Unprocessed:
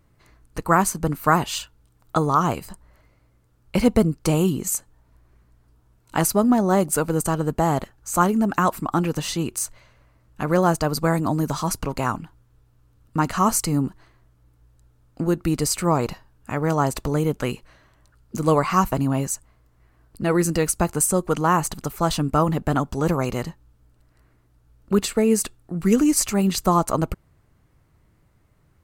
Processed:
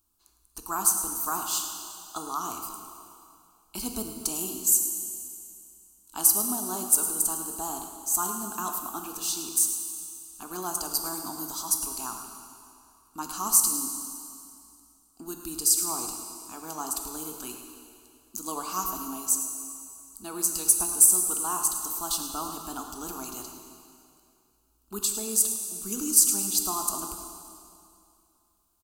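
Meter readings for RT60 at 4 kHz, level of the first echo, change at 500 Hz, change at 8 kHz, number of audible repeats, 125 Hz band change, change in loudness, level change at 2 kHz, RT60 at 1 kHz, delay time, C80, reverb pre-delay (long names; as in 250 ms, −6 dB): 2.3 s, −11.5 dB, −18.5 dB, +5.0 dB, 1, −26.5 dB, −3.5 dB, −16.0 dB, 2.5 s, 107 ms, 5.0 dB, 6 ms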